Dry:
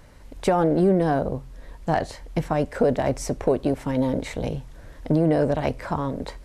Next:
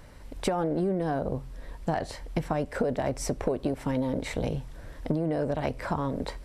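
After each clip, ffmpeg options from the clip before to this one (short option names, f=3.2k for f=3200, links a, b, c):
-af "bandreject=f=6.6k:w=17,acompressor=threshold=-24dB:ratio=6"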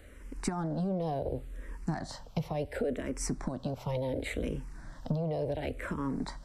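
-filter_complex "[0:a]acrossover=split=350|2400[a][b][c];[b]alimiter=level_in=3dB:limit=-24dB:level=0:latency=1,volume=-3dB[d];[a][d][c]amix=inputs=3:normalize=0,asplit=2[e][f];[f]afreqshift=-0.7[g];[e][g]amix=inputs=2:normalize=1"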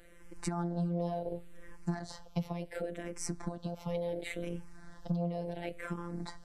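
-af "afftfilt=real='hypot(re,im)*cos(PI*b)':imag='0':win_size=1024:overlap=0.75"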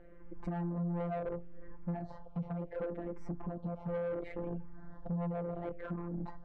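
-af "lowpass=1k,asoftclip=type=tanh:threshold=-35.5dB,volume=4dB"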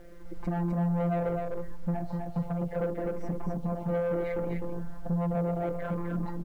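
-af "acrusher=bits=11:mix=0:aa=0.000001,aecho=1:1:254:0.631,volume=6.5dB"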